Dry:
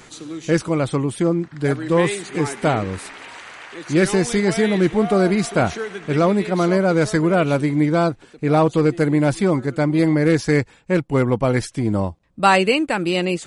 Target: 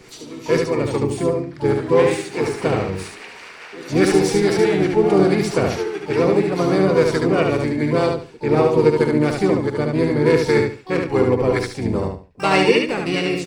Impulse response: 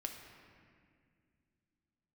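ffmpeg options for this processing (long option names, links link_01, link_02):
-filter_complex "[0:a]acrossover=split=460[link_01][link_02];[link_01]aeval=exprs='val(0)*(1-0.5/2+0.5/2*cos(2*PI*4.8*n/s))':channel_layout=same[link_03];[link_02]aeval=exprs='val(0)*(1-0.5/2-0.5/2*cos(2*PI*4.8*n/s))':channel_layout=same[link_04];[link_03][link_04]amix=inputs=2:normalize=0,superequalizer=7b=2.51:12b=1.78:14b=2,asplit=4[link_05][link_06][link_07][link_08];[link_06]asetrate=22050,aresample=44100,atempo=2,volume=-17dB[link_09];[link_07]asetrate=35002,aresample=44100,atempo=1.25992,volume=-5dB[link_10];[link_08]asetrate=88200,aresample=44100,atempo=0.5,volume=-15dB[link_11];[link_05][link_09][link_10][link_11]amix=inputs=4:normalize=0,asplit=2[link_12][link_13];[link_13]aecho=0:1:73|146|219:0.631|0.158|0.0394[link_14];[link_12][link_14]amix=inputs=2:normalize=0,volume=-3dB"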